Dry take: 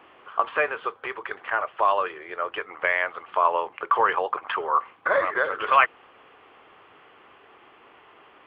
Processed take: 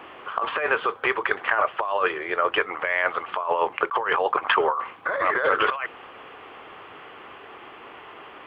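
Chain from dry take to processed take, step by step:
compressor whose output falls as the input rises −28 dBFS, ratio −1
level +5 dB

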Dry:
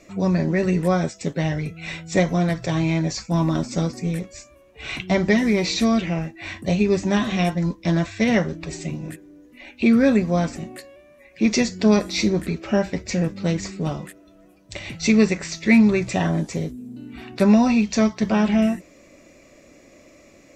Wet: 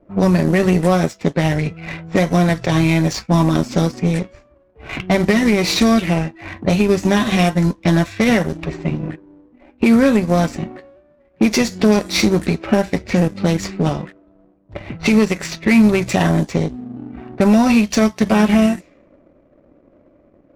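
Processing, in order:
variable-slope delta modulation 64 kbit/s
low-pass that shuts in the quiet parts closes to 610 Hz, open at −18.5 dBFS
downward compressor 2 to 1, threshold −25 dBFS, peak gain reduction 8 dB
power curve on the samples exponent 1.4
boost into a limiter +17 dB
level −2.5 dB

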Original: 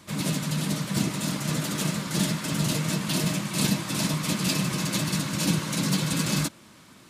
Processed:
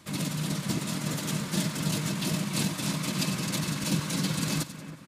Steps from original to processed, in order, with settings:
tempo change 1.4×
echo with a time of its own for lows and highs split 2,500 Hz, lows 317 ms, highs 92 ms, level −13 dB
level −3 dB

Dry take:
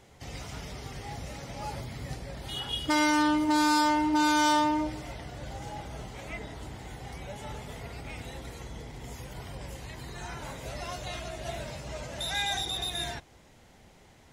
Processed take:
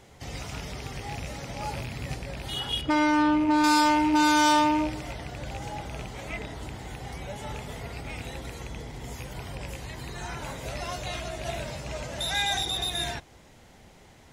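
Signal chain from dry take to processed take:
loose part that buzzes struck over −36 dBFS, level −31 dBFS
in parallel at −10 dB: gain into a clipping stage and back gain 21 dB
0:02.81–0:03.64: on the sum: low-pass filter 1,600 Hz 6 dB per octave
level +1 dB

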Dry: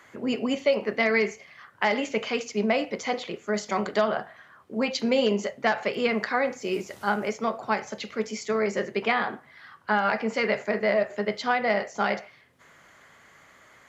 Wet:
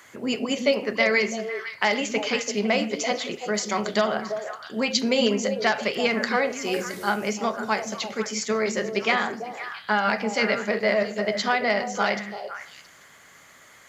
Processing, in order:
high-shelf EQ 3,600 Hz +12 dB
echo through a band-pass that steps 168 ms, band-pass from 210 Hz, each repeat 1.4 octaves, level −3 dB

